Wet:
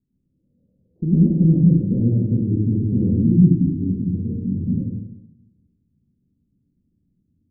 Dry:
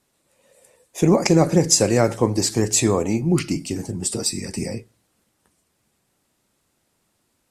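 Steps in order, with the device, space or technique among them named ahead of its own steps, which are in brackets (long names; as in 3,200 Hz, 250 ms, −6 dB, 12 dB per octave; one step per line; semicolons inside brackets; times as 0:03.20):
club heard from the street (brickwall limiter −9.5 dBFS, peak gain reduction 6.5 dB; low-pass filter 250 Hz 24 dB per octave; convolution reverb RT60 0.85 s, pre-delay 93 ms, DRR −5.5 dB)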